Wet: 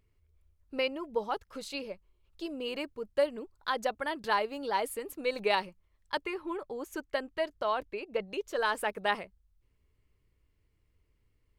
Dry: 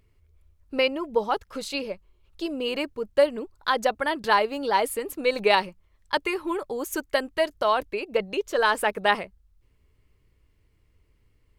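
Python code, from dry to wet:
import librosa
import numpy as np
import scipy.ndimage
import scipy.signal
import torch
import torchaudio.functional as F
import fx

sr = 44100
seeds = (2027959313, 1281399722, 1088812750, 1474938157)

y = fx.high_shelf(x, sr, hz=fx.line((6.22, 5300.0), (8.27, 8000.0)), db=-11.0, at=(6.22, 8.27), fade=0.02)
y = y * 10.0 ** (-8.0 / 20.0)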